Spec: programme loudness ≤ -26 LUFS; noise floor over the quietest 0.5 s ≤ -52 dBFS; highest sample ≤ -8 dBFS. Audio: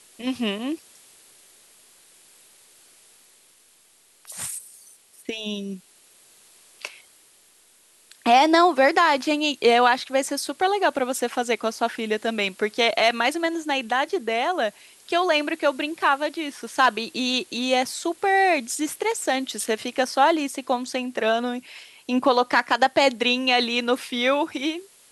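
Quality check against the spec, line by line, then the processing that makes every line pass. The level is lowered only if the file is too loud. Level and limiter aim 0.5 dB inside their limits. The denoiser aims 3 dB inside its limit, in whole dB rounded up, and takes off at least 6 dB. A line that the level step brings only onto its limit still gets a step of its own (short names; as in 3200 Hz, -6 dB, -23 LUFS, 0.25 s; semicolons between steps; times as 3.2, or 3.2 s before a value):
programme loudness -22.5 LUFS: fail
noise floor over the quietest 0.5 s -58 dBFS: OK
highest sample -4.5 dBFS: fail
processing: gain -4 dB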